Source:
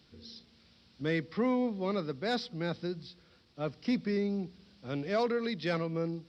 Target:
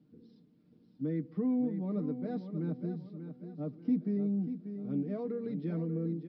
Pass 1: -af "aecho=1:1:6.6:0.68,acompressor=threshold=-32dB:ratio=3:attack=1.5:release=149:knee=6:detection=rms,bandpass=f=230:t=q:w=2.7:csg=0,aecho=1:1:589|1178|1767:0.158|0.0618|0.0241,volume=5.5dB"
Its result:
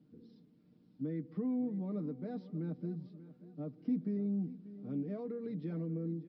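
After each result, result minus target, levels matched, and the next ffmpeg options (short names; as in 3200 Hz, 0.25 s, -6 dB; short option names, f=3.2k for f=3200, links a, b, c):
compressor: peak gain reduction +5 dB; echo-to-direct -6.5 dB
-af "aecho=1:1:6.6:0.68,acompressor=threshold=-24.5dB:ratio=3:attack=1.5:release=149:knee=6:detection=rms,bandpass=f=230:t=q:w=2.7:csg=0,aecho=1:1:589|1178|1767:0.158|0.0618|0.0241,volume=5.5dB"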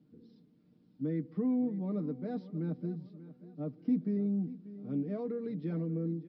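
echo-to-direct -6.5 dB
-af "aecho=1:1:6.6:0.68,acompressor=threshold=-24.5dB:ratio=3:attack=1.5:release=149:knee=6:detection=rms,bandpass=f=230:t=q:w=2.7:csg=0,aecho=1:1:589|1178|1767|2356:0.335|0.131|0.0509|0.0199,volume=5.5dB"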